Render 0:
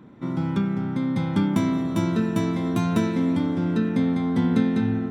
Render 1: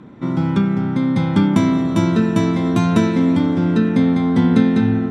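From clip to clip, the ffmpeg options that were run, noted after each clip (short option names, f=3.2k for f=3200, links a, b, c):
-af "lowpass=8.9k,volume=7dB"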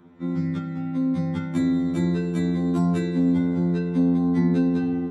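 -af "afftfilt=real='re*2*eq(mod(b,4),0)':imag='im*2*eq(mod(b,4),0)':win_size=2048:overlap=0.75,volume=-8dB"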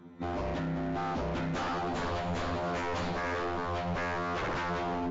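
-af "bandreject=f=111.8:t=h:w=4,bandreject=f=223.6:t=h:w=4,bandreject=f=335.4:t=h:w=4,bandreject=f=447.2:t=h:w=4,bandreject=f=559:t=h:w=4,bandreject=f=670.8:t=h:w=4,bandreject=f=782.6:t=h:w=4,bandreject=f=894.4:t=h:w=4,bandreject=f=1.0062k:t=h:w=4,bandreject=f=1.118k:t=h:w=4,bandreject=f=1.2298k:t=h:w=4,bandreject=f=1.3416k:t=h:w=4,bandreject=f=1.4534k:t=h:w=4,bandreject=f=1.5652k:t=h:w=4,bandreject=f=1.677k:t=h:w=4,bandreject=f=1.7888k:t=h:w=4,bandreject=f=1.9006k:t=h:w=4,bandreject=f=2.0124k:t=h:w=4,bandreject=f=2.1242k:t=h:w=4,bandreject=f=2.236k:t=h:w=4,bandreject=f=2.3478k:t=h:w=4,bandreject=f=2.4596k:t=h:w=4,bandreject=f=2.5714k:t=h:w=4,bandreject=f=2.6832k:t=h:w=4,bandreject=f=2.795k:t=h:w=4,bandreject=f=2.9068k:t=h:w=4,bandreject=f=3.0186k:t=h:w=4,bandreject=f=3.1304k:t=h:w=4,bandreject=f=3.2422k:t=h:w=4,bandreject=f=3.354k:t=h:w=4,bandreject=f=3.4658k:t=h:w=4,bandreject=f=3.5776k:t=h:w=4,bandreject=f=3.6894k:t=h:w=4,bandreject=f=3.8012k:t=h:w=4,bandreject=f=3.913k:t=h:w=4,aeval=exprs='0.0398*(abs(mod(val(0)/0.0398+3,4)-2)-1)':c=same" -ar 16000 -c:a mp2 -b:a 128k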